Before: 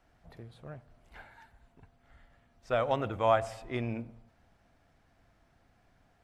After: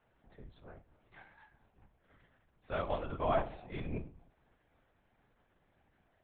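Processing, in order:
tuned comb filter 110 Hz, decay 0.28 s, harmonics all, mix 80%
linear-prediction vocoder at 8 kHz whisper
level +1.5 dB

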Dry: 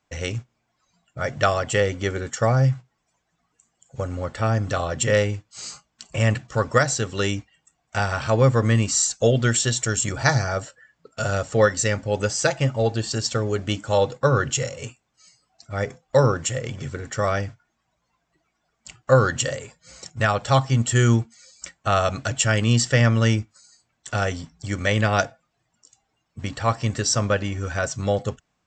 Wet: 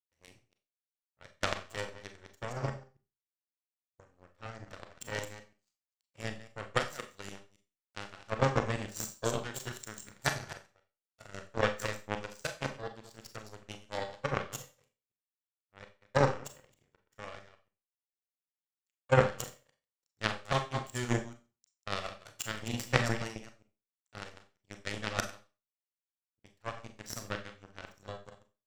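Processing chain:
delay that plays each chunk backwards 135 ms, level −5 dB
power curve on the samples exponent 3
four-comb reverb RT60 0.31 s, combs from 29 ms, DRR 7 dB
level +1 dB

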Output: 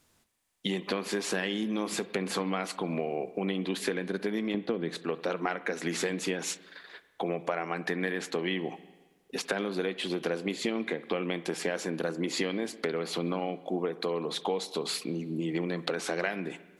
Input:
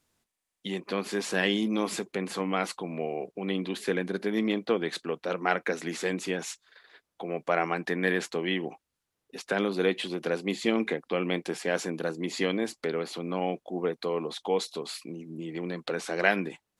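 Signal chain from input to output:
0:04.54–0:04.97: parametric band 180 Hz +10.5 dB 2.7 octaves
downward compressor 12 to 1, threshold −34 dBFS, peak gain reduction 20 dB
spring reverb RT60 1.3 s, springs 47/53 ms, chirp 20 ms, DRR 15 dB
level +7 dB

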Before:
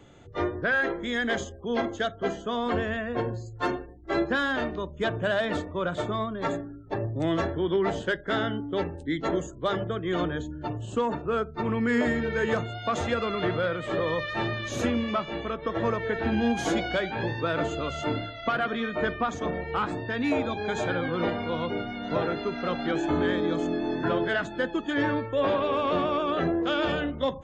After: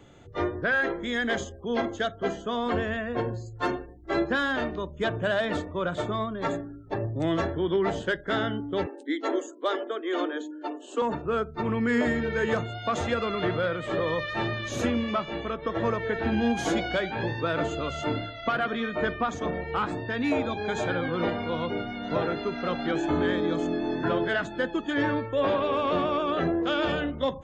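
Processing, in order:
0:08.86–0:11.02: Butterworth high-pass 250 Hz 96 dB per octave

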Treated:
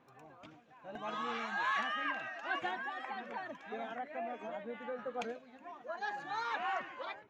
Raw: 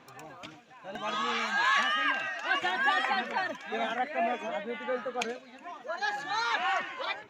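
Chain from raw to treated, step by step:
0:02.74–0:04.99: downward compressor 3 to 1, threshold −33 dBFS, peak gain reduction 9 dB
high-shelf EQ 2,200 Hz −11.5 dB
automatic gain control gain up to 4 dB
level −8.5 dB

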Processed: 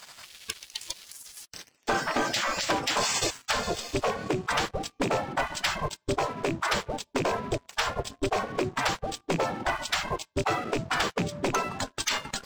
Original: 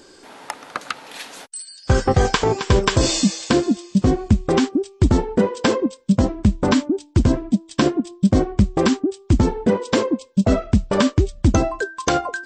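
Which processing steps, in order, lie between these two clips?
loose part that buzzes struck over −14 dBFS, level −23 dBFS
spectral tilt −3 dB per octave
gate on every frequency bin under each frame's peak −25 dB weak
downward compressor 4 to 1, threshold −39 dBFS, peak gain reduction 15 dB
leveller curve on the samples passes 3
level +4 dB

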